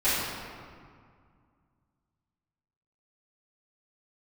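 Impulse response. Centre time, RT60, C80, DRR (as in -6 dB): 125 ms, 2.1 s, 0.0 dB, -17.5 dB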